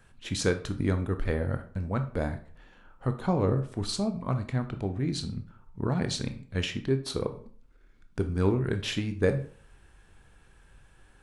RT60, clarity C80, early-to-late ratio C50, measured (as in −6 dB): 0.45 s, 17.0 dB, 12.0 dB